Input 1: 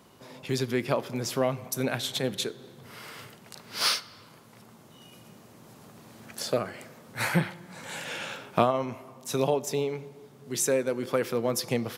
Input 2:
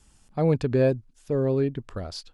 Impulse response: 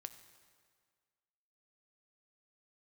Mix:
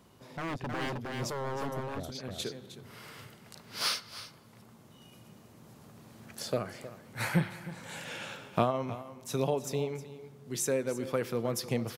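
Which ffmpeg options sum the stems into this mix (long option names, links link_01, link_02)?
-filter_complex "[0:a]lowshelf=frequency=130:gain=9.5,volume=-5.5dB,asplit=2[link_01][link_02];[link_02]volume=-14.5dB[link_03];[1:a]highpass=99,afwtdn=0.00562,aeval=exprs='0.0596*(abs(mod(val(0)/0.0596+3,4)-2)-1)':channel_layout=same,volume=-6dB,asplit=3[link_04][link_05][link_06];[link_05]volume=-3.5dB[link_07];[link_06]apad=whole_len=527974[link_08];[link_01][link_08]sidechaincompress=threshold=-60dB:ratio=4:attack=37:release=200[link_09];[link_03][link_07]amix=inputs=2:normalize=0,aecho=0:1:313:1[link_10];[link_09][link_04][link_10]amix=inputs=3:normalize=0"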